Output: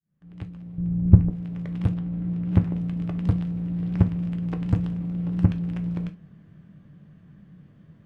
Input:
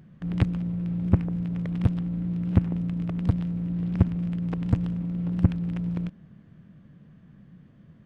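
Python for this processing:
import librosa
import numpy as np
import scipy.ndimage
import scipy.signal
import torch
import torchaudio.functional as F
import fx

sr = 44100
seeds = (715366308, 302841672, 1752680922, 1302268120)

y = fx.fade_in_head(x, sr, length_s=2.29)
y = fx.tilt_eq(y, sr, slope=-4.0, at=(0.78, 1.3))
y = fx.lowpass(y, sr, hz=2900.0, slope=6, at=(1.94, 2.52))
y = fx.rev_gated(y, sr, seeds[0], gate_ms=90, shape='falling', drr_db=7.0)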